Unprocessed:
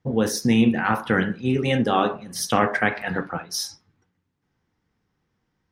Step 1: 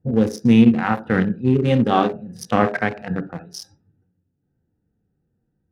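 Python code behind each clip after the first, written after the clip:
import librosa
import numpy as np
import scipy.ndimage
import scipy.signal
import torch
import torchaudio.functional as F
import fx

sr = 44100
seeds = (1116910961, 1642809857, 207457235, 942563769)

y = fx.wiener(x, sr, points=41)
y = fx.hpss(y, sr, part='harmonic', gain_db=9)
y = y * 10.0 ** (-2.5 / 20.0)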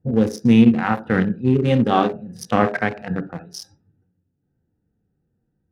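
y = x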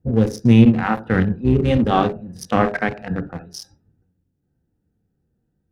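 y = fx.octave_divider(x, sr, octaves=1, level_db=-6.0)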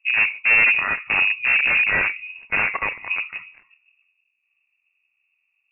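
y = fx.cheby_harmonics(x, sr, harmonics=(4, 7, 8), levels_db=(-17, -33, -27), full_scale_db=-1.5)
y = 10.0 ** (-11.5 / 20.0) * (np.abs((y / 10.0 ** (-11.5 / 20.0) + 3.0) % 4.0 - 2.0) - 1.0)
y = fx.freq_invert(y, sr, carrier_hz=2700)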